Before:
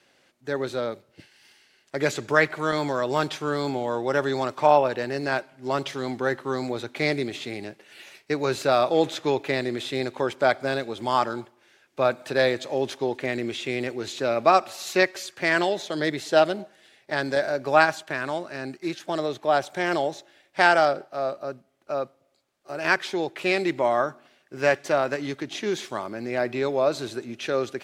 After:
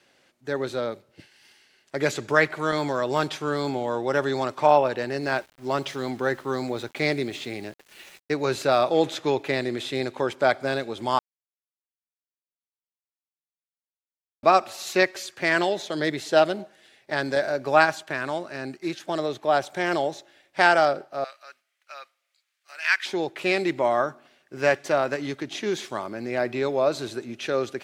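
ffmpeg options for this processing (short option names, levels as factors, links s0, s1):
-filter_complex "[0:a]asettb=1/sr,asplit=3[s0][s1][s2];[s0]atrim=end=5.224[s3];[s1]atrim=start=5.22:end=8.34,asetpts=PTS-STARTPTS,afade=t=in:d=0.004:c=qsin,afade=t=out:st=3.116:d=0.004:c=qsin,aeval=exprs='val(0)*gte(abs(val(0)),0.00422)':c=same[s4];[s2]atrim=start=8.336[s5];[s3][s4]acrossfade=d=0.004:c1=hsin:c2=qsin[s6];[s6][s5]acrossfade=d=0.004:c1=qsin:c2=hsin,asettb=1/sr,asplit=3[s7][s8][s9];[s7]atrim=end=21.244[s10];[s8]atrim=start=21.24:end=23.06,asetpts=PTS-STARTPTS,afade=t=in:d=0.004:c=qsin,afade=t=out:st=1.816:d=0.004:c=qsin,highpass=f=2000:t=q:w=1.5[s11];[s9]atrim=start=23.056[s12];[s10][s11]acrossfade=d=0.004:c1=hsin:c2=qsin[s13];[s13][s12]acrossfade=d=0.004:c1=qsin:c2=hsin,asplit=3[s14][s15][s16];[s14]atrim=end=11.19,asetpts=PTS-STARTPTS,afade=t=out:st=11.186:d=0.004:c=hsin[s17];[s15]atrim=start=11.19:end=14.43,asetpts=PTS-STARTPTS,volume=0[s18];[s16]atrim=start=14.43,asetpts=PTS-STARTPTS,afade=t=in:d=0.004:c=hsin[s19];[s17][s18][s19]concat=n=3:v=0:a=1"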